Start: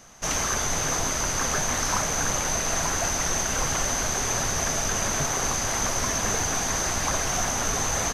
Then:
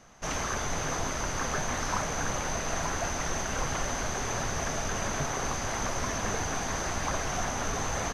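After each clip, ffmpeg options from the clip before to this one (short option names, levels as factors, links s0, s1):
-af "lowpass=f=2900:p=1,volume=0.708"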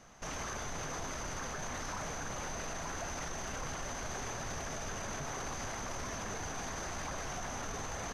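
-af "alimiter=level_in=1.88:limit=0.0631:level=0:latency=1:release=15,volume=0.531,volume=0.794"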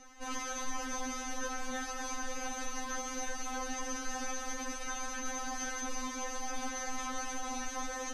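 -af "afftfilt=real='re*3.46*eq(mod(b,12),0)':imag='im*3.46*eq(mod(b,12),0)':win_size=2048:overlap=0.75,volume=1.58"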